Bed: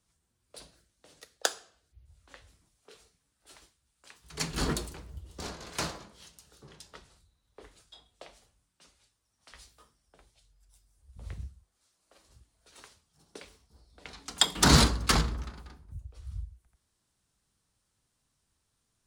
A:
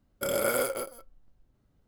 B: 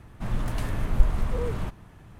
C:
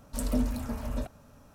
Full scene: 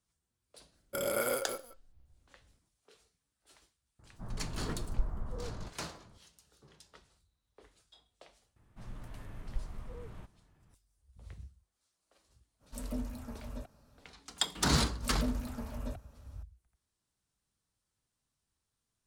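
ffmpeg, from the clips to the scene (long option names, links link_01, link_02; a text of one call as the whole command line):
ffmpeg -i bed.wav -i cue0.wav -i cue1.wav -i cue2.wav -filter_complex "[2:a]asplit=2[link_01][link_02];[3:a]asplit=2[link_03][link_04];[0:a]volume=-8dB[link_05];[link_01]lowpass=frequency=1500:width=0.5412,lowpass=frequency=1500:width=1.3066[link_06];[1:a]atrim=end=1.87,asetpts=PTS-STARTPTS,volume=-5dB,afade=type=in:duration=0.004:curve=hsin,afade=type=out:start_time=1.866:duration=0.004:curve=hsin,adelay=720[link_07];[link_06]atrim=end=2.19,asetpts=PTS-STARTPTS,volume=-12.5dB,afade=type=in:duration=0.004:curve=hsin,afade=type=out:start_time=2.186:duration=0.004:curve=hsin,adelay=3990[link_08];[link_02]atrim=end=2.19,asetpts=PTS-STARTPTS,volume=-18dB,afade=type=in:duration=0.004:curve=hsin,afade=type=out:start_time=2.186:duration=0.004:curve=hsin,adelay=8560[link_09];[link_03]atrim=end=1.54,asetpts=PTS-STARTPTS,volume=-10dB,afade=type=in:duration=0.05,afade=type=out:start_time=1.49:duration=0.05,adelay=12590[link_10];[link_04]atrim=end=1.54,asetpts=PTS-STARTPTS,volume=-6.5dB,afade=type=in:duration=0.004:curve=hsin,afade=type=out:start_time=1.536:duration=0.004:curve=hsin,adelay=14890[link_11];[link_05][link_07][link_08][link_09][link_10][link_11]amix=inputs=6:normalize=0" out.wav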